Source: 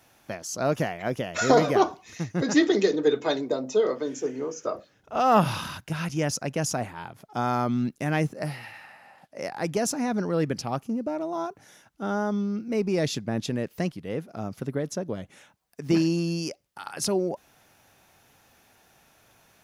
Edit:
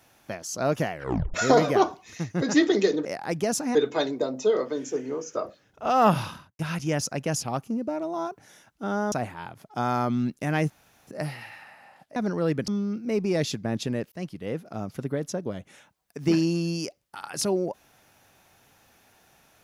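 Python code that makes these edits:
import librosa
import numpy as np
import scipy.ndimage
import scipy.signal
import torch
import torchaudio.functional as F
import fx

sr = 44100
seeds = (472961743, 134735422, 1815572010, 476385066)

y = fx.studio_fade_out(x, sr, start_s=5.41, length_s=0.48)
y = fx.edit(y, sr, fx.tape_stop(start_s=0.92, length_s=0.42),
    fx.insert_room_tone(at_s=8.29, length_s=0.37),
    fx.move(start_s=9.38, length_s=0.7, to_s=3.05),
    fx.move(start_s=10.6, length_s=1.71, to_s=6.71),
    fx.fade_in_span(start_s=13.75, length_s=0.29, curve='qsin'), tone=tone)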